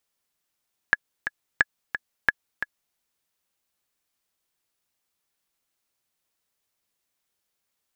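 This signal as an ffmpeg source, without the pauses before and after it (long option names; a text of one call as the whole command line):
ffmpeg -f lavfi -i "aevalsrc='pow(10,(-4-9.5*gte(mod(t,2*60/177),60/177))/20)*sin(2*PI*1690*mod(t,60/177))*exp(-6.91*mod(t,60/177)/0.03)':duration=2.03:sample_rate=44100" out.wav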